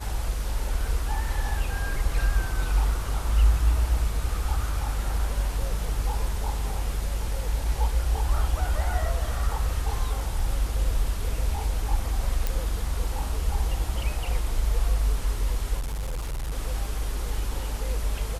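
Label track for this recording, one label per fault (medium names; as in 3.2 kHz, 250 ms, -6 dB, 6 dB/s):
12.470000	12.470000	pop
15.790000	16.520000	clipped -26.5 dBFS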